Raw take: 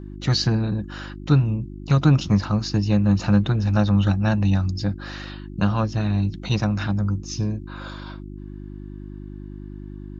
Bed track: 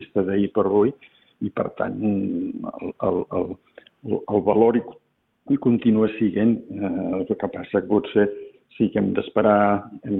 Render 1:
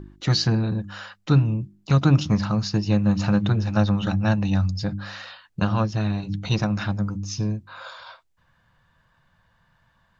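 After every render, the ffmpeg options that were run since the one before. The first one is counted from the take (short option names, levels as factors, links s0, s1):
-af "bandreject=f=50:t=h:w=4,bandreject=f=100:t=h:w=4,bandreject=f=150:t=h:w=4,bandreject=f=200:t=h:w=4,bandreject=f=250:t=h:w=4,bandreject=f=300:t=h:w=4,bandreject=f=350:t=h:w=4"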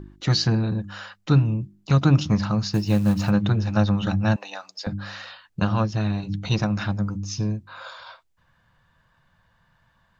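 -filter_complex "[0:a]asplit=3[s0][s1][s2];[s0]afade=t=out:st=2.72:d=0.02[s3];[s1]acrusher=bits=7:mode=log:mix=0:aa=0.000001,afade=t=in:st=2.72:d=0.02,afade=t=out:st=3.29:d=0.02[s4];[s2]afade=t=in:st=3.29:d=0.02[s5];[s3][s4][s5]amix=inputs=3:normalize=0,asettb=1/sr,asplit=3[s6][s7][s8];[s6]atrim=end=4.364[s9];[s7]atrim=start=4.36:end=4.87,asetpts=PTS-STARTPTS,afade=t=in:d=0.004:c=qsin,afade=t=out:st=0.506:d=0.004:c=qsin,highpass=f=510:w=0.5412,highpass=f=510:w=1.3066[s10];[s8]atrim=start=4.866[s11];[s9][s10]acrossfade=d=0.004:c1=hsin:c2=qsin[s12];[s12][s11]acrossfade=d=0.004:c1=qsin:c2=hsin"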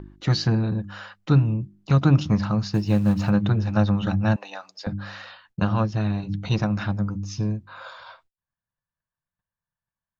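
-af "agate=range=0.0316:threshold=0.00141:ratio=16:detection=peak,highshelf=f=4000:g=-8"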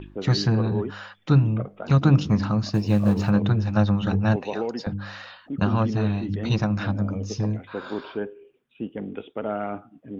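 -filter_complex "[1:a]volume=0.251[s0];[0:a][s0]amix=inputs=2:normalize=0"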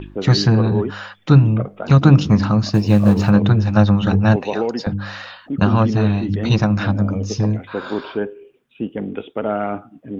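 -af "volume=2.24,alimiter=limit=0.891:level=0:latency=1"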